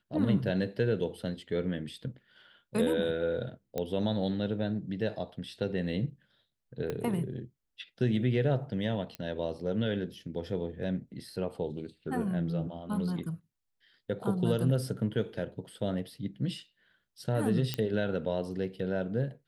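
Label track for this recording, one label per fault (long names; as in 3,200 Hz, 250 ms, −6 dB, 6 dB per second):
3.780000	3.780000	click −19 dBFS
6.900000	6.900000	click −21 dBFS
9.150000	9.150000	click −23 dBFS
17.740000	17.740000	click −15 dBFS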